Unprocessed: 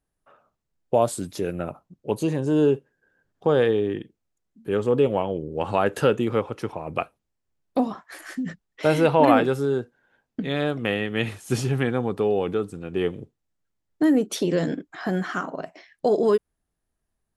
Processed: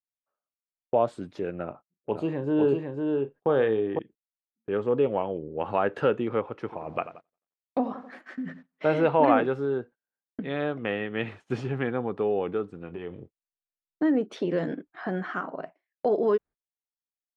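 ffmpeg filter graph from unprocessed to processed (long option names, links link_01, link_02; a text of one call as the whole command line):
ffmpeg -i in.wav -filter_complex "[0:a]asettb=1/sr,asplit=3[link_01][link_02][link_03];[link_01]atrim=end=1.654[link_04];[link_02]atrim=start=1.65:end=3.99,asetpts=PTS-STARTPTS,afade=type=in:duration=0.004:curve=qsin,afade=type=out:start_time=2.336:duration=0.004:curve=qsin,equalizer=frequency=6000:width_type=o:width=0.29:gain=-7.5,asplit=2[link_05][link_06];[link_06]adelay=36,volume=-12dB[link_07];[link_05][link_07]amix=inputs=2:normalize=0,atrim=end_sample=103194,aecho=1:1:502:0.631,atrim=end_sample=103194[link_08];[link_03]atrim=start=3.986[link_09];[link_04][link_08]acrossfade=duration=0.004:curve1=hsin:curve2=qsin[link_10];[link_10][link_09]acrossfade=duration=0.004:curve1=qsin:curve2=hsin,asettb=1/sr,asplit=3[link_11][link_12][link_13];[link_11]atrim=end=6.594[link_14];[link_12]atrim=start=6.59:end=9.04,asetpts=PTS-STARTPTS,afade=type=in:duration=0.004:curve=qsin,afade=type=out:start_time=2.446:duration=0.004:curve=qsin,asplit=2[link_15][link_16];[link_16]adelay=89,lowpass=frequency=2300:poles=1,volume=-13dB,asplit=2[link_17][link_18];[link_18]adelay=89,lowpass=frequency=2300:poles=1,volume=0.55,asplit=2[link_19][link_20];[link_20]adelay=89,lowpass=frequency=2300:poles=1,volume=0.55,asplit=2[link_21][link_22];[link_22]adelay=89,lowpass=frequency=2300:poles=1,volume=0.55,asplit=2[link_23][link_24];[link_24]adelay=89,lowpass=frequency=2300:poles=1,volume=0.55,asplit=2[link_25][link_26];[link_26]adelay=89,lowpass=frequency=2300:poles=1,volume=0.55[link_27];[link_15][link_17][link_19][link_21][link_23][link_25][link_27]amix=inputs=7:normalize=0,atrim=end_sample=108045,acrusher=bits=8:mix=0:aa=0.5[link_28];[link_13]atrim=start=9.036[link_29];[link_14][link_28]acrossfade=duration=0.004:curve1=hsin:curve2=qsin[link_30];[link_30][link_29]acrossfade=duration=0.004:curve1=qsin:curve2=hsin,asettb=1/sr,asplit=3[link_31][link_32][link_33];[link_31]atrim=end=12.784[link_34];[link_32]atrim=start=12.78:end=14.02,asetpts=PTS-STARTPTS,afade=type=in:duration=0.004:curve=qsin,afade=type=out:start_time=1.236:duration=0.004:curve=qsin,asubboost=boost=8:cutoff=130,acompressor=threshold=-27dB:ratio=10:attack=3.2:release=140:knee=1:detection=peak,asplit=2[link_35][link_36];[link_36]adelay=23,volume=-10dB[link_37];[link_35][link_37]amix=inputs=2:normalize=0,atrim=end_sample=54684[link_38];[link_33]atrim=start=14.016[link_39];[link_34][link_38]acrossfade=duration=0.004:curve1=hsin:curve2=qsin[link_40];[link_40][link_39]acrossfade=duration=0.004:curve1=qsin:curve2=hsin,agate=range=-29dB:threshold=-40dB:ratio=16:detection=peak,lowpass=2300,lowshelf=frequency=160:gain=-9,volume=-2.5dB" out.wav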